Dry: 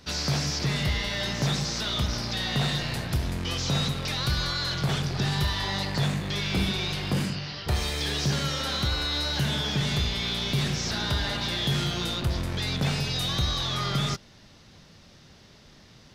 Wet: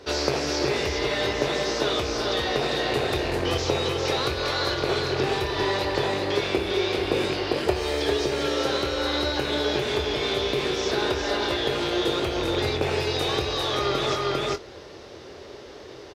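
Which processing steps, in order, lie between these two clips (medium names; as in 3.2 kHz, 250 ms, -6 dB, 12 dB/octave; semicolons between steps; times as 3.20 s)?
rattle on loud lows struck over -26 dBFS, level -24 dBFS; tilt EQ -2.5 dB/octave; compression, threshold -19 dBFS, peak gain reduction 7 dB; high-pass 63 Hz; resonant low shelf 270 Hz -13 dB, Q 3; doubling 24 ms -11 dB; delay 399 ms -3.5 dB; gain riding 0.5 s; trim +4.5 dB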